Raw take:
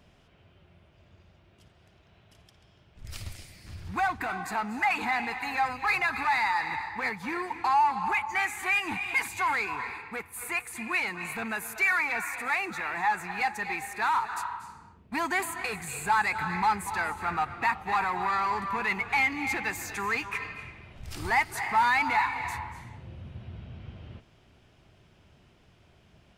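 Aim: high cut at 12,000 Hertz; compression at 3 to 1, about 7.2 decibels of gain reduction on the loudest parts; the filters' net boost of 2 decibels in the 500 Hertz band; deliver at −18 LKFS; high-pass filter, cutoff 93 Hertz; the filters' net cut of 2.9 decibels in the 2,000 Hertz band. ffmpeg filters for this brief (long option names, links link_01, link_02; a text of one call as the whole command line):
ffmpeg -i in.wav -af "highpass=93,lowpass=12000,equalizer=frequency=500:width_type=o:gain=3,equalizer=frequency=2000:width_type=o:gain=-3.5,acompressor=threshold=-29dB:ratio=3,volume=15dB" out.wav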